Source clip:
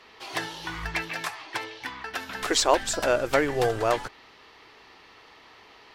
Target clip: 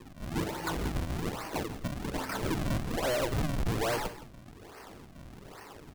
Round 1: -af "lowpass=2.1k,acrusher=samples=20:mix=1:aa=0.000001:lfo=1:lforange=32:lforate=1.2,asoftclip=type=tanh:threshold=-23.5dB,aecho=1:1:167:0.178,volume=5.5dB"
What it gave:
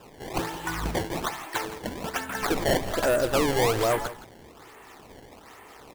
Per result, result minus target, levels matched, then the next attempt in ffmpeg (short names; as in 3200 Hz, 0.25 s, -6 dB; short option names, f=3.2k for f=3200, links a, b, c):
decimation with a swept rate: distortion -10 dB; soft clip: distortion -5 dB
-af "lowpass=2.1k,acrusher=samples=59:mix=1:aa=0.000001:lfo=1:lforange=94.4:lforate=1.2,asoftclip=type=tanh:threshold=-23.5dB,aecho=1:1:167:0.178,volume=5.5dB"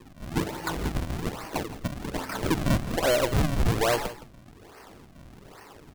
soft clip: distortion -5 dB
-af "lowpass=2.1k,acrusher=samples=59:mix=1:aa=0.000001:lfo=1:lforange=94.4:lforate=1.2,asoftclip=type=tanh:threshold=-33dB,aecho=1:1:167:0.178,volume=5.5dB"